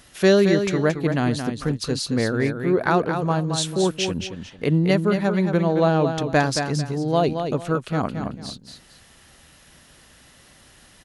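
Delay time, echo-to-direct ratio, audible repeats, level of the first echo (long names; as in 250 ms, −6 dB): 223 ms, −6.5 dB, 2, −7.0 dB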